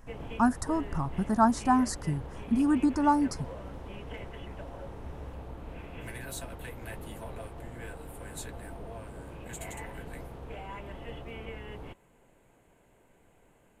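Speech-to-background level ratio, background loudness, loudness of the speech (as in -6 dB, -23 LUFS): 15.5 dB, -43.0 LUFS, -27.5 LUFS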